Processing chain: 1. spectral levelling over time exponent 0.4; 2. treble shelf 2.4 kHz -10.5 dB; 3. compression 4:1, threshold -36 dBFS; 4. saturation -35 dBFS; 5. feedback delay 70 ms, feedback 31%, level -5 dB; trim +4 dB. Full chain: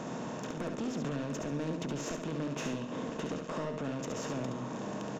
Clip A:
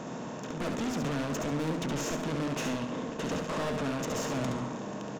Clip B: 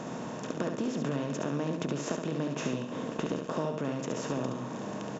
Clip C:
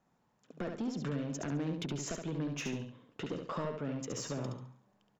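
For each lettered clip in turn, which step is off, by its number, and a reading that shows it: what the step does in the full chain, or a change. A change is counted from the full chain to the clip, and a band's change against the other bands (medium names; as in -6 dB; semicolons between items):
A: 3, mean gain reduction 8.0 dB; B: 4, distortion -11 dB; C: 1, 8 kHz band +3.5 dB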